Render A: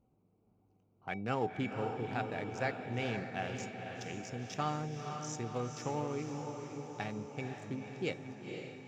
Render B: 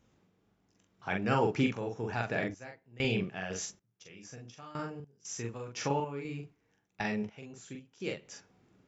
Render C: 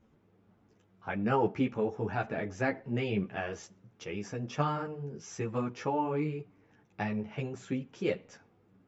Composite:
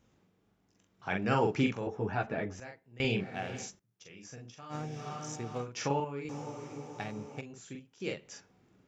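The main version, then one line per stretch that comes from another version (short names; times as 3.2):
B
1.87–2.6 from C
3.23–3.64 from A, crossfade 0.16 s
4.72–5.64 from A, crossfade 0.06 s
6.29–7.41 from A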